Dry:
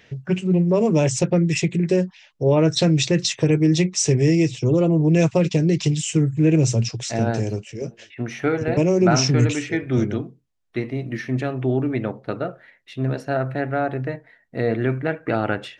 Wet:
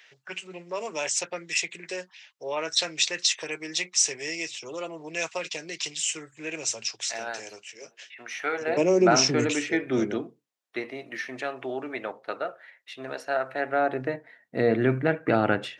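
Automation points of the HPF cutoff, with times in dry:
8.35 s 1100 Hz
8.93 s 310 Hz
10.15 s 310 Hz
11.14 s 660 Hz
13.48 s 660 Hz
14.02 s 260 Hz
15.1 s 120 Hz

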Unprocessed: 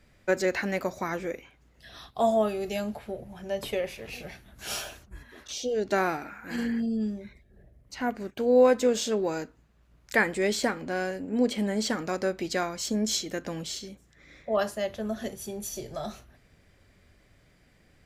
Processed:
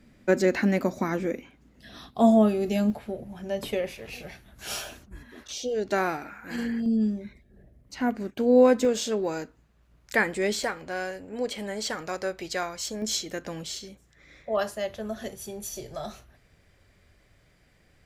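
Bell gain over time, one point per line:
bell 240 Hz 1 oct
+13 dB
from 2.9 s +6 dB
from 3.92 s -0.5 dB
from 4.89 s +8 dB
from 5.43 s -0.5 dB
from 6.86 s +5.5 dB
from 8.85 s -0.5 dB
from 10.64 s -11 dB
from 13.02 s -3.5 dB

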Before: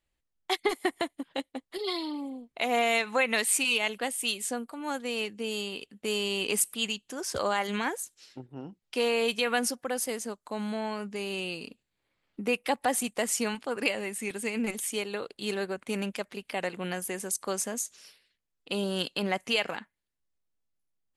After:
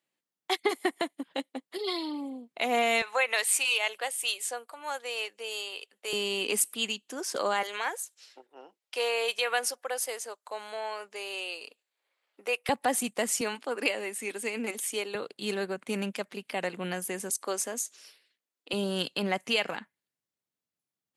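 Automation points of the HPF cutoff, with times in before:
HPF 24 dB/oct
170 Hz
from 3.02 s 500 Hz
from 6.13 s 220 Hz
from 7.63 s 470 Hz
from 12.69 s 120 Hz
from 13.41 s 260 Hz
from 15.15 s 130 Hz
from 17.3 s 260 Hz
from 18.73 s 110 Hz

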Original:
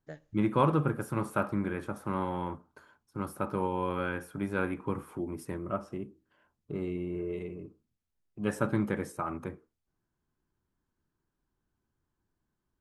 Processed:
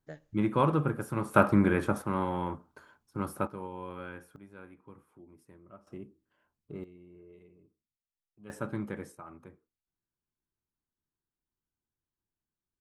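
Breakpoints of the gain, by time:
-0.5 dB
from 1.34 s +8 dB
from 2.02 s +1.5 dB
from 3.47 s -9.5 dB
from 4.36 s -19 dB
from 5.87 s -6 dB
from 6.84 s -19 dB
from 8.5 s -6.5 dB
from 9.15 s -13 dB

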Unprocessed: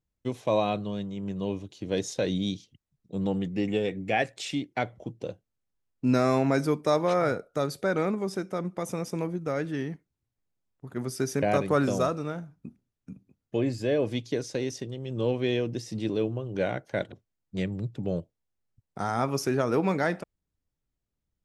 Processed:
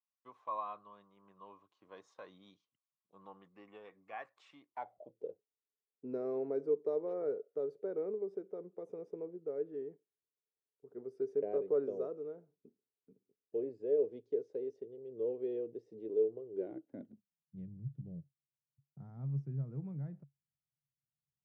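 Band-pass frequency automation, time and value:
band-pass, Q 9.7
4.69 s 1100 Hz
5.25 s 430 Hz
16.48 s 430 Hz
17.6 s 140 Hz

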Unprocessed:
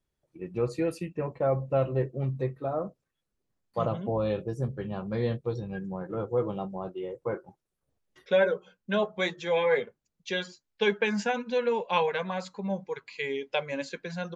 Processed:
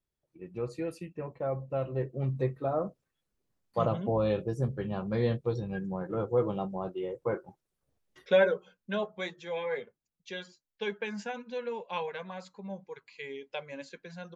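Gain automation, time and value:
1.83 s -6.5 dB
2.38 s +0.5 dB
8.35 s +0.5 dB
9.38 s -9 dB

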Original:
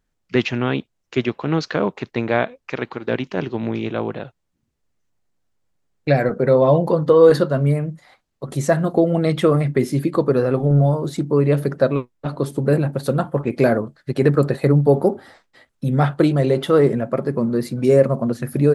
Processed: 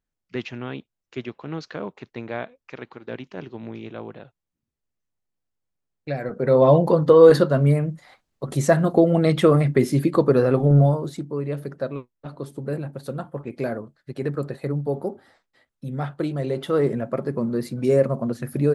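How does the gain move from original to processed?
6.2 s -11.5 dB
6.62 s 0 dB
10.82 s 0 dB
11.32 s -11 dB
16.13 s -11 dB
17.01 s -4.5 dB

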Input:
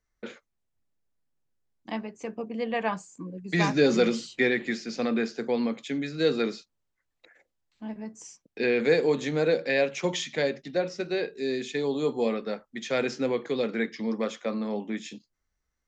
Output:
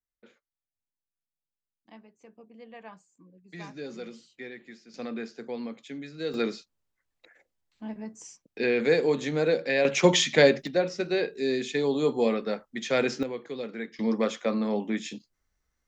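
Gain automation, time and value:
-17.5 dB
from 4.94 s -8.5 dB
from 6.34 s -0.5 dB
from 9.85 s +8.5 dB
from 10.67 s +2 dB
from 13.23 s -7.5 dB
from 13.99 s +3 dB

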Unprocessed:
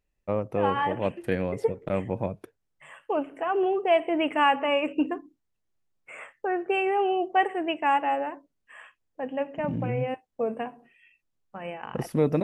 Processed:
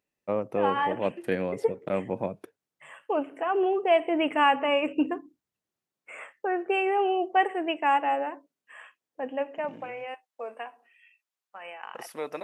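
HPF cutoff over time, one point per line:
4.01 s 180 Hz
4.48 s 72 Hz
5.13 s 72 Hz
6.15 s 240 Hz
9.26 s 240 Hz
9.99 s 830 Hz

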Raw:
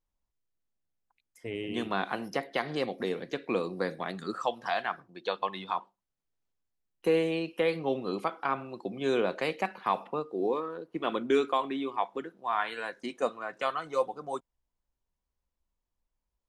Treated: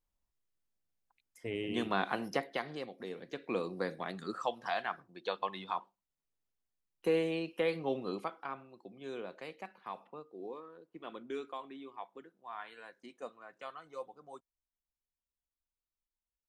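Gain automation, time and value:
2.36 s -1.5 dB
2.92 s -13 dB
3.61 s -4.5 dB
8.08 s -4.5 dB
8.71 s -15 dB

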